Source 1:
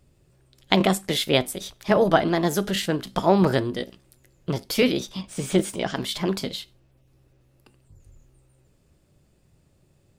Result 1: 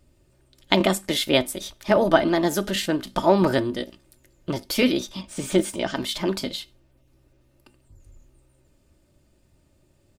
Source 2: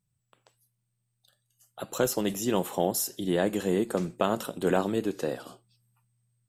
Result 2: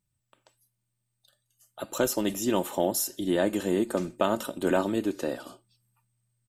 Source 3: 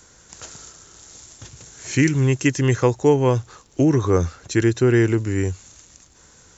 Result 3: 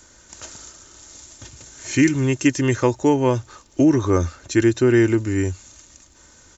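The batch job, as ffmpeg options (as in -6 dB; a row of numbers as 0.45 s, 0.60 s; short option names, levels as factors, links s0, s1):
-af "aecho=1:1:3.3:0.44"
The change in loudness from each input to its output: +0.5 LU, +0.5 LU, +0.5 LU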